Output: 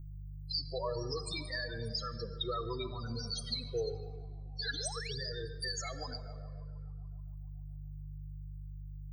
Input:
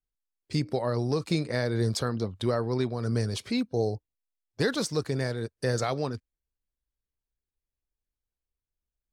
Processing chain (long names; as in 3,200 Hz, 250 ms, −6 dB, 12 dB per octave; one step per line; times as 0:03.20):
downward expander −44 dBFS
first-order pre-emphasis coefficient 0.97
upward compression, threshold −32 dBFS
spectral peaks only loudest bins 8
hum with harmonics 50 Hz, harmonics 3, −55 dBFS −2 dB per octave
on a send: feedback echo with a band-pass in the loop 142 ms, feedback 75%, band-pass 820 Hz, level −12 dB
on the sum: rectangular room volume 3,400 cubic metres, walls mixed, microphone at 0.71 metres
sound drawn into the spectrogram rise, 0:04.73–0:05.18, 260–5,000 Hz −53 dBFS
flanger whose copies keep moving one way falling 0.69 Hz
level +11.5 dB